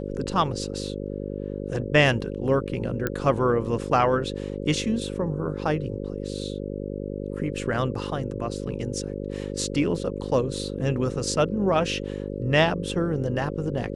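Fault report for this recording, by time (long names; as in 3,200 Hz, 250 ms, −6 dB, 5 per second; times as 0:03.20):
mains buzz 50 Hz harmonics 11 −32 dBFS
0:03.07: click −11 dBFS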